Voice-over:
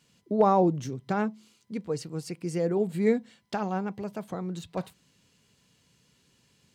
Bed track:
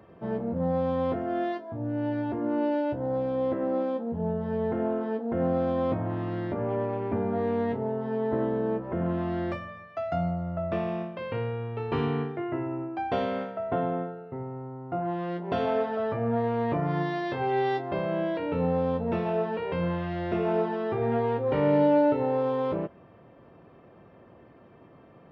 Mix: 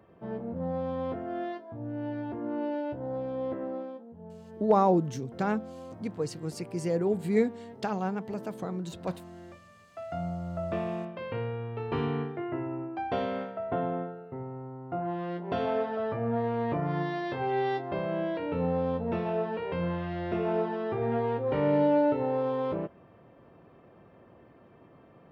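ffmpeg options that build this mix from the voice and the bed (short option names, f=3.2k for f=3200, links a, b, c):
-filter_complex "[0:a]adelay=4300,volume=-1dB[a];[1:a]volume=9dB,afade=t=out:st=3.55:d=0.53:silence=0.266073,afade=t=in:st=9.63:d=0.97:silence=0.188365[b];[a][b]amix=inputs=2:normalize=0"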